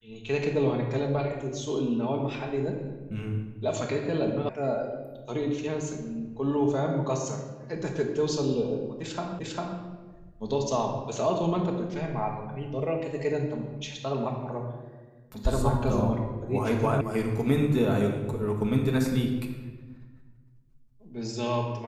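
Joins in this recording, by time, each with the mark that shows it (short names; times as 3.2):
4.49 sound cut off
9.39 repeat of the last 0.4 s
17.01 sound cut off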